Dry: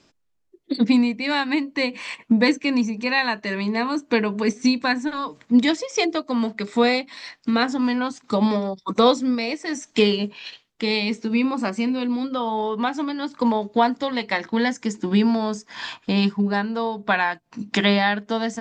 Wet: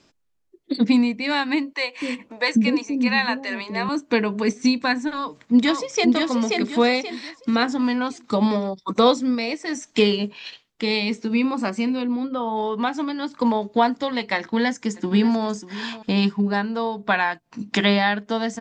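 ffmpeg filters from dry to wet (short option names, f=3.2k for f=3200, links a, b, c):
-filter_complex "[0:a]asettb=1/sr,asplit=3[a][b][c];[a]atrim=end=1.734[d];[b]atrim=start=1.73:end=3.89,asetpts=PTS-STARTPTS,afade=t=in:d=0.004:c=qsin,afade=t=out:st=2.156:d=0.004:c=qsin,acrossover=split=470[e][f];[e]adelay=250[g];[g][f]amix=inputs=2:normalize=0,atrim=end_sample=95256[h];[c]atrim=start=3.886[i];[d][h]acrossfade=d=0.004:c1=hsin:c2=qsin[j];[j][i]acrossfade=d=0.004:c1=qsin:c2=hsin,asplit=2[k][l];[l]afade=t=in:st=5.12:d=0.01,afade=t=out:st=6.14:d=0.01,aecho=0:1:530|1060|1590|2120|2650:0.707946|0.247781|0.0867234|0.0303532|0.0106236[m];[k][m]amix=inputs=2:normalize=0,asplit=3[n][o][p];[n]afade=t=out:st=12.01:d=0.02[q];[o]lowpass=f=1.7k:p=1,afade=t=in:st=12.01:d=0.02,afade=t=out:st=12.55:d=0.02[r];[p]afade=t=in:st=12.55:d=0.02[s];[q][r][s]amix=inputs=3:normalize=0,asplit=2[t][u];[u]afade=t=in:st=14.37:d=0.01,afade=t=out:st=15.43:d=0.01,aecho=0:1:590|1180:0.158489|0.0158489[v];[t][v]amix=inputs=2:normalize=0"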